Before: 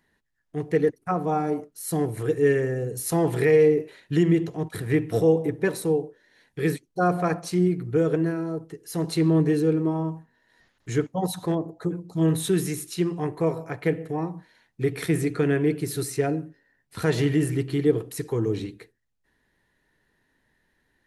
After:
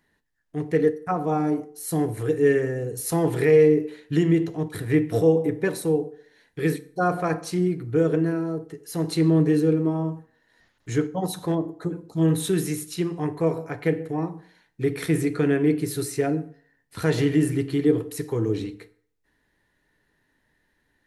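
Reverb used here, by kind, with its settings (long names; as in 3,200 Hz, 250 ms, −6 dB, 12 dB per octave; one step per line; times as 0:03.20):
feedback delay network reverb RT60 0.54 s, low-frequency decay 0.9×, high-frequency decay 0.75×, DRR 11.5 dB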